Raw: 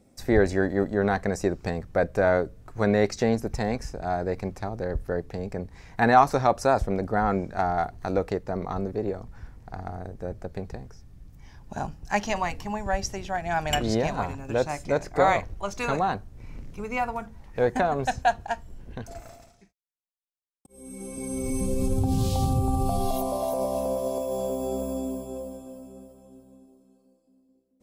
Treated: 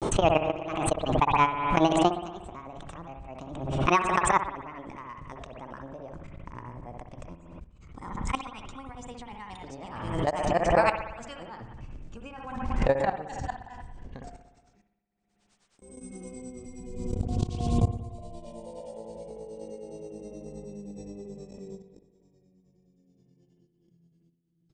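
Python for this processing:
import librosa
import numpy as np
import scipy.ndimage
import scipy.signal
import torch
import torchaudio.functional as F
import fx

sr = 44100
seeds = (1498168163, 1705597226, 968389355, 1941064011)

y = fx.speed_glide(x, sr, from_pct=163, to_pct=62)
y = scipy.signal.sosfilt(scipy.signal.cheby1(5, 1.0, 8700.0, 'lowpass', fs=sr, output='sos'), y)
y = fx.level_steps(y, sr, step_db=22)
y = fx.granulator(y, sr, seeds[0], grain_ms=113.0, per_s=9.5, spray_ms=17.0, spread_st=0)
y = fx.rev_spring(y, sr, rt60_s=1.0, pass_ms=(59,), chirp_ms=45, drr_db=8.0)
y = fx.pre_swell(y, sr, db_per_s=46.0)
y = F.gain(torch.from_numpy(y), 4.0).numpy()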